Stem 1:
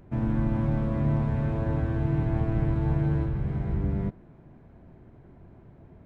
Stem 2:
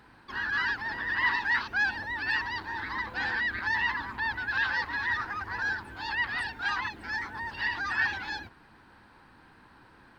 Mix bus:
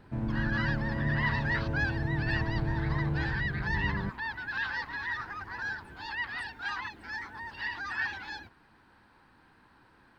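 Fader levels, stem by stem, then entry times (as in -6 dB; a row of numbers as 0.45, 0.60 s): -5.5, -5.0 dB; 0.00, 0.00 s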